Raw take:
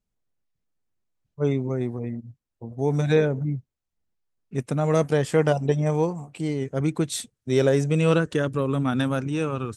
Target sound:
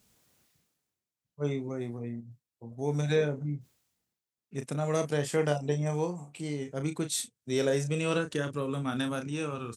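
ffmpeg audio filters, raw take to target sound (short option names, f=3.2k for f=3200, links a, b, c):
-filter_complex "[0:a]highpass=93,highshelf=f=2.7k:g=8,areverse,acompressor=mode=upward:threshold=-39dB:ratio=2.5,areverse,asplit=2[a][b];[b]adelay=34,volume=-8dB[c];[a][c]amix=inputs=2:normalize=0,volume=-8.5dB"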